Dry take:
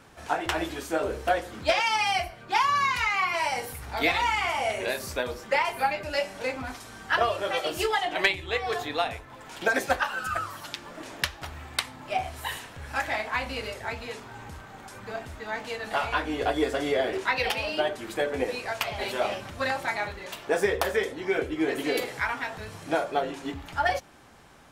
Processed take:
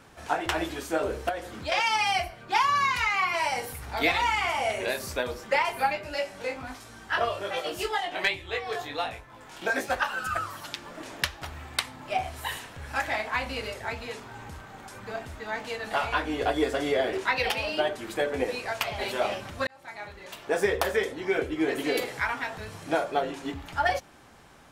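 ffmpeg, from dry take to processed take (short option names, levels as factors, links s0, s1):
-filter_complex "[0:a]asettb=1/sr,asplit=3[s0][s1][s2];[s0]atrim=end=1.294[s3];[s1]atrim=start=1.29:end=1.72,asetpts=PTS-STARTPTS,afade=t=in:d=0.004:c=qsin,afade=t=out:st=0.426:d=0.004:c=qsin,acompressor=threshold=0.02:ratio=2:attack=3.2:release=140:knee=1:detection=peak[s4];[s2]atrim=start=1.716[s5];[s3][s4]acrossfade=d=0.004:c1=hsin:c2=qsin[s6];[s6][s5]acrossfade=d=0.004:c1=qsin:c2=hsin,asplit=3[s7][s8][s9];[s7]afade=t=out:st=5.97:d=0.02[s10];[s8]flanger=delay=17:depth=4.7:speed=1.3,afade=t=in:st=5.97:d=0.02,afade=t=out:st=9.95:d=0.02[s11];[s9]afade=t=in:st=9.95:d=0.02[s12];[s10][s11][s12]amix=inputs=3:normalize=0,asplit=2[s13][s14];[s13]atrim=end=19.67,asetpts=PTS-STARTPTS,afade=t=out:st=19.666:d=0.004:c=hsin[s15];[s14]atrim=start=19.67,asetpts=PTS-STARTPTS,afade=t=in:d=1.01[s16];[s15][s16]concat=n=2:v=0:a=1"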